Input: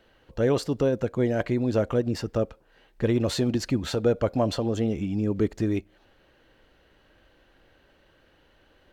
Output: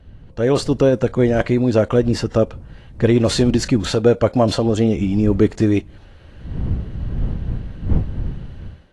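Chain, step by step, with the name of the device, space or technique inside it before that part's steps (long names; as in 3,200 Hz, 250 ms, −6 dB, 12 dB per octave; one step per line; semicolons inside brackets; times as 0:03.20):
smartphone video outdoors (wind on the microphone 95 Hz −37 dBFS; automatic gain control gain up to 10.5 dB; AAC 48 kbit/s 24,000 Hz)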